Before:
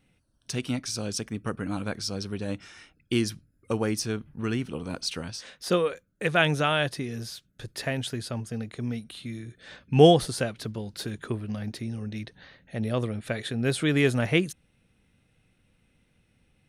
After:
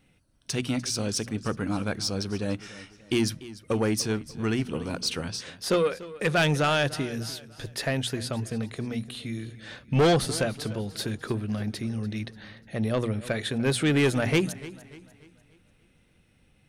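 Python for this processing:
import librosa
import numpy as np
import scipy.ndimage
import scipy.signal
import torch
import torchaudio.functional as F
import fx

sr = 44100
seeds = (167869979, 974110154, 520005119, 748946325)

y = fx.hum_notches(x, sr, base_hz=60, count=4)
y = 10.0 ** (-20.0 / 20.0) * np.tanh(y / 10.0 ** (-20.0 / 20.0))
y = fx.echo_warbled(y, sr, ms=294, feedback_pct=42, rate_hz=2.8, cents=64, wet_db=-17.5)
y = y * librosa.db_to_amplitude(3.5)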